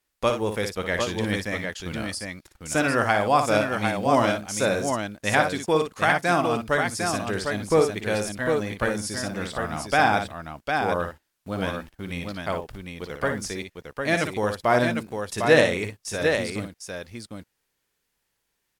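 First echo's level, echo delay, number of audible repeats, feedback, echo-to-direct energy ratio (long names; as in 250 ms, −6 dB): −7.0 dB, 57 ms, 2, repeats not evenly spaced, −3.0 dB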